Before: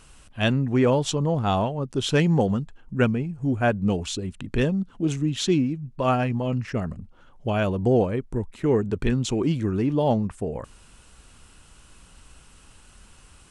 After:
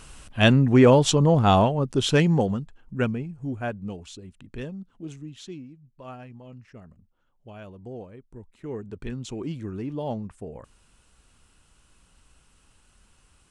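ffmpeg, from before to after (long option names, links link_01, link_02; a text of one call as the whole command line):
ffmpeg -i in.wav -af "volume=15dB,afade=type=out:start_time=1.59:duration=1.02:silence=0.354813,afade=type=out:start_time=3.11:duration=0.85:silence=0.375837,afade=type=out:start_time=4.96:duration=0.64:silence=0.473151,afade=type=in:start_time=8.17:duration=1.28:silence=0.316228" out.wav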